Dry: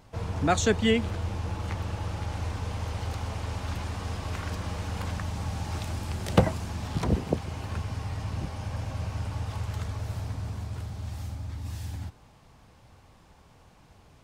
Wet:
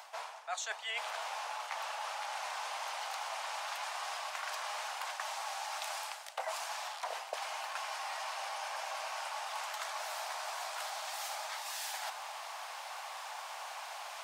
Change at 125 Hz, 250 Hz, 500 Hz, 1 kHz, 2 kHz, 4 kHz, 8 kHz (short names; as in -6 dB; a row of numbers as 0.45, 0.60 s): under -40 dB, under -40 dB, -12.5 dB, 0.0 dB, -1.0 dB, -0.5 dB, -0.5 dB